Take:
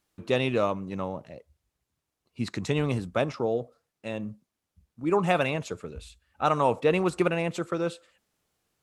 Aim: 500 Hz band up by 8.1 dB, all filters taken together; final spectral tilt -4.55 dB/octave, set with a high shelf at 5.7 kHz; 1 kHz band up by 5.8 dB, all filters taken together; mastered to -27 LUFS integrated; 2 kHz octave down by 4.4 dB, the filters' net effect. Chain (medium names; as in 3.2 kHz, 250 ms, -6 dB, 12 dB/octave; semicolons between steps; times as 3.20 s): peaking EQ 500 Hz +8.5 dB; peaking EQ 1 kHz +6.5 dB; peaking EQ 2 kHz -8.5 dB; treble shelf 5.7 kHz -3 dB; trim -5 dB